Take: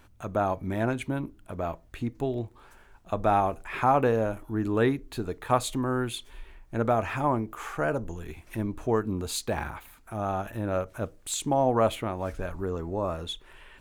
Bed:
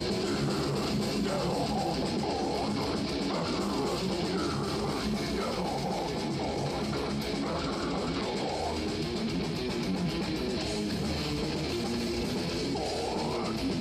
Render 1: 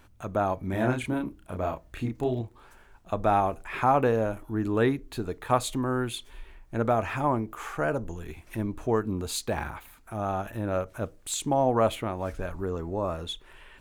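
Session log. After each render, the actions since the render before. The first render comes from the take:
0:00.70–0:02.41: double-tracking delay 32 ms −2.5 dB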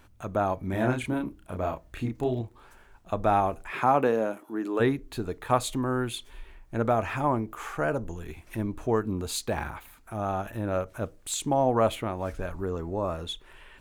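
0:03.70–0:04.79: high-pass filter 110 Hz → 310 Hz 24 dB per octave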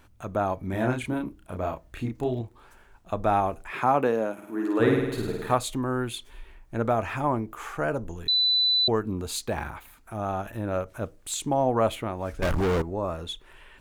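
0:04.33–0:05.55: flutter between parallel walls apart 8.9 metres, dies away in 1.1 s
0:08.28–0:08.88: beep over 3,990 Hz −19 dBFS
0:12.42–0:12.82: leveller curve on the samples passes 5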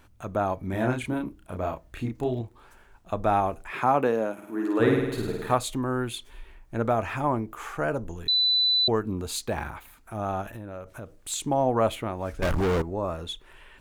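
0:10.53–0:11.17: downward compressor 5 to 1, threshold −35 dBFS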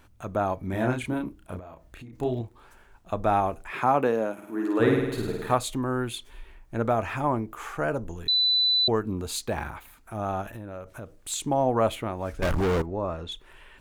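0:01.59–0:02.13: downward compressor 12 to 1, threshold −40 dBFS
0:12.86–0:13.32: high-frequency loss of the air 89 metres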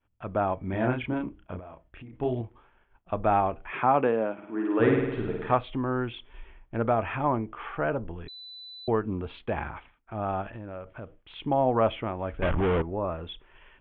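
Chebyshev low-pass filter 3,300 Hz, order 6
downward expander −46 dBFS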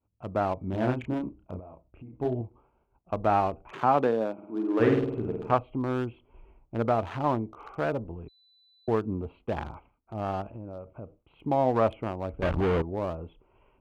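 adaptive Wiener filter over 25 samples
high-pass filter 44 Hz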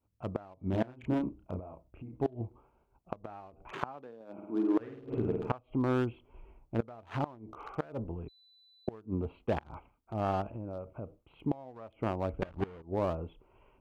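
gate with flip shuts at −18 dBFS, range −24 dB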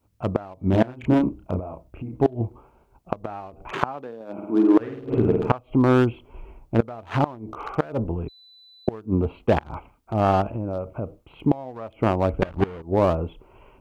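level +12 dB

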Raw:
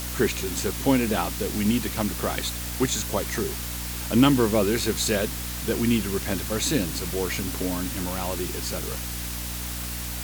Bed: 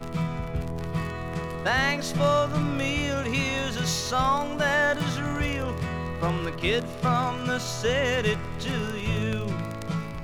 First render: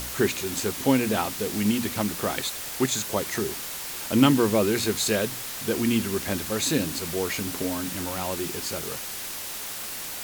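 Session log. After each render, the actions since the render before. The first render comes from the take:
hum removal 60 Hz, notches 5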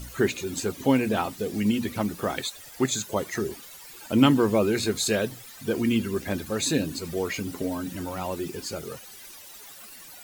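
broadband denoise 15 dB, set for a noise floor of −35 dBFS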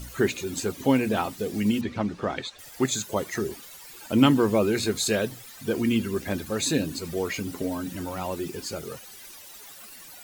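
0:01.81–0:02.59: high-frequency loss of the air 130 metres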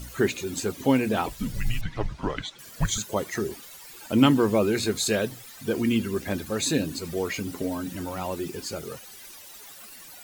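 0:01.26–0:02.98: frequency shifter −230 Hz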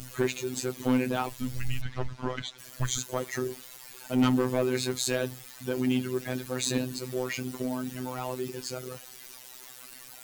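soft clipping −17 dBFS, distortion −14 dB
phases set to zero 127 Hz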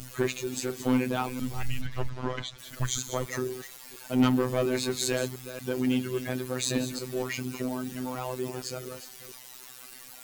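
delay that plays each chunk backwards 233 ms, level −11 dB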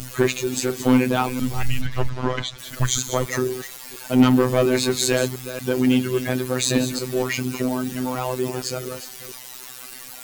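level +8.5 dB
brickwall limiter −1 dBFS, peak gain reduction 2.5 dB

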